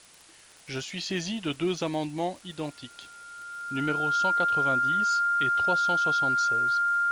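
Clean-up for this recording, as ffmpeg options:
-af "adeclick=t=4,bandreject=f=1.4k:w=30,afwtdn=0.0025"

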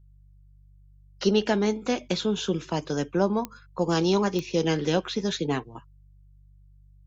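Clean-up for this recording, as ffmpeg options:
-af "adeclick=t=4,bandreject=f=48.8:t=h:w=4,bandreject=f=97.6:t=h:w=4,bandreject=f=146.4:t=h:w=4"

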